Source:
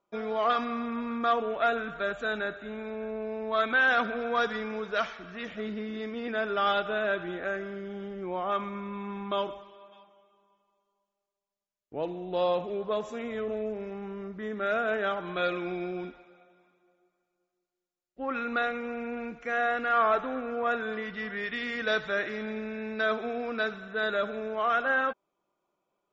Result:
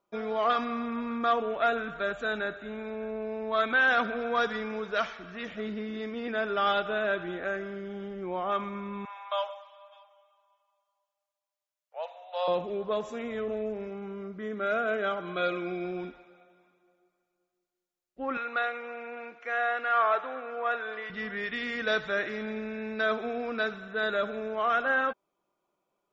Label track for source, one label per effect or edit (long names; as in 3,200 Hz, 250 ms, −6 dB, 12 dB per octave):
9.050000	12.480000	Butterworth high-pass 550 Hz 72 dB per octave
13.870000	15.850000	notch comb filter 900 Hz
18.370000	21.100000	band-pass filter 530–4,500 Hz